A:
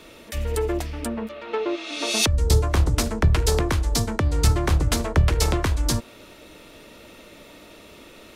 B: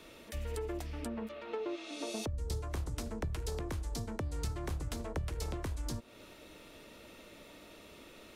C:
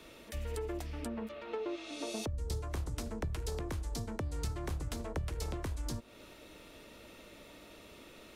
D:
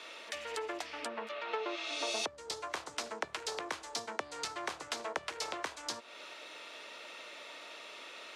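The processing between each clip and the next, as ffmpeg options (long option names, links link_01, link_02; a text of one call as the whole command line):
ffmpeg -i in.wav -filter_complex "[0:a]acrossover=split=830|6800[link_01][link_02][link_03];[link_01]acompressor=threshold=-28dB:ratio=4[link_04];[link_02]acompressor=threshold=-41dB:ratio=4[link_05];[link_03]acompressor=threshold=-45dB:ratio=4[link_06];[link_04][link_05][link_06]amix=inputs=3:normalize=0,volume=-8dB" out.wav
ffmpeg -i in.wav -af "aeval=exprs='val(0)+0.000316*(sin(2*PI*50*n/s)+sin(2*PI*2*50*n/s)/2+sin(2*PI*3*50*n/s)/3+sin(2*PI*4*50*n/s)/4+sin(2*PI*5*50*n/s)/5)':channel_layout=same" out.wav
ffmpeg -i in.wav -af "highpass=780,lowpass=6000,volume=9.5dB" out.wav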